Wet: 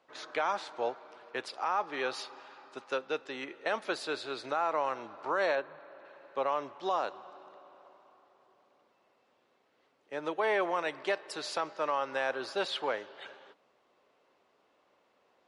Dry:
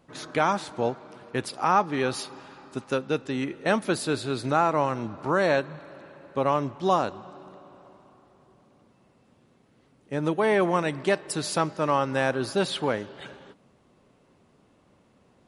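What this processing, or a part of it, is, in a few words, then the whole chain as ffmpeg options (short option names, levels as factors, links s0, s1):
DJ mixer with the lows and highs turned down: -filter_complex "[0:a]asettb=1/sr,asplit=3[s0][s1][s2];[s0]atrim=end=5.554[s3];[s1]atrim=start=5.55:end=6.05,asetpts=PTS-STARTPTS,afade=t=in:d=0.004:c=qsin,afade=t=out:st=0.496:d=0.004:c=qsin,lowpass=f=1900:p=1[s4];[s2]atrim=start=6.046[s5];[s3][s4]acrossfade=d=0.004:c1=hsin:c2=qsin[s6];[s6][s5]acrossfade=d=0.004:c1=qsin:c2=hsin,acrossover=split=400 6200:gain=0.0631 1 0.126[s7][s8][s9];[s7][s8][s9]amix=inputs=3:normalize=0,alimiter=limit=0.141:level=0:latency=1:release=47,volume=0.668"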